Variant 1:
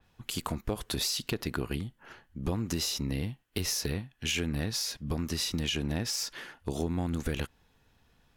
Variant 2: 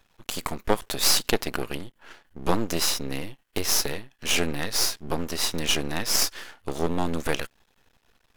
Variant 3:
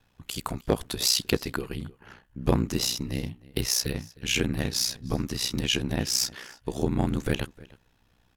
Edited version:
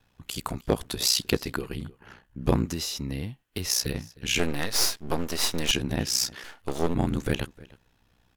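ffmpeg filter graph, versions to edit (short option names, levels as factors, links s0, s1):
-filter_complex "[1:a]asplit=2[s0][s1];[2:a]asplit=4[s2][s3][s4][s5];[s2]atrim=end=2.662[s6];[0:a]atrim=start=2.658:end=3.692[s7];[s3]atrim=start=3.688:end=4.392[s8];[s0]atrim=start=4.388:end=5.712[s9];[s4]atrim=start=5.708:end=6.442[s10];[s1]atrim=start=6.438:end=6.942[s11];[s5]atrim=start=6.938[s12];[s6][s7]acrossfade=d=0.004:c1=hsin:c2=hsin[s13];[s13][s8]acrossfade=d=0.004:c1=hsin:c2=hsin[s14];[s14][s9]acrossfade=d=0.004:c1=hsin:c2=hsin[s15];[s15][s10]acrossfade=d=0.004:c1=hsin:c2=hsin[s16];[s16][s11]acrossfade=d=0.004:c1=hsin:c2=hsin[s17];[s17][s12]acrossfade=d=0.004:c1=hsin:c2=hsin"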